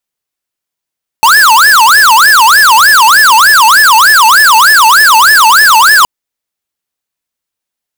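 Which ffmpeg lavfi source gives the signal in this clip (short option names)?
-f lavfi -i "aevalsrc='0.631*(2*lt(mod((1310*t-440/(2*PI*3.3)*sin(2*PI*3.3*t)),1),0.5)-1)':d=4.82:s=44100"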